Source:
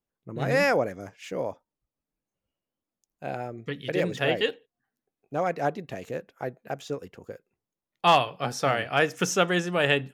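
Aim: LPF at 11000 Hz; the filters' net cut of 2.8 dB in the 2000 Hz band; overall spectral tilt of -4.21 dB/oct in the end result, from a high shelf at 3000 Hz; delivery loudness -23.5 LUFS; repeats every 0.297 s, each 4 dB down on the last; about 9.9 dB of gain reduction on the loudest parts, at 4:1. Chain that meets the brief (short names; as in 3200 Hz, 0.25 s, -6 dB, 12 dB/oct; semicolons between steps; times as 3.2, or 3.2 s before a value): LPF 11000 Hz; bell 2000 Hz -5 dB; high shelf 3000 Hz +3.5 dB; compressor 4:1, threshold -26 dBFS; feedback echo 0.297 s, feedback 63%, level -4 dB; gain +8 dB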